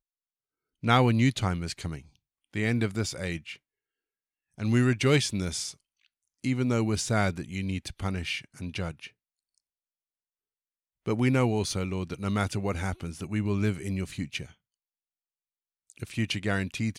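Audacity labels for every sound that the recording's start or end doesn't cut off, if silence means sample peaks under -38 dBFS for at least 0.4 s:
0.830000	1.990000	sound
2.540000	3.540000	sound
4.580000	5.720000	sound
6.440000	9.070000	sound
11.060000	14.460000	sound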